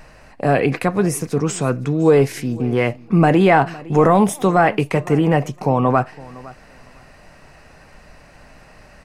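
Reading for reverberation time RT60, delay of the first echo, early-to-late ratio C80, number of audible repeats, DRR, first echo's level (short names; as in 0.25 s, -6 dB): none, 0.51 s, none, 1, none, -21.0 dB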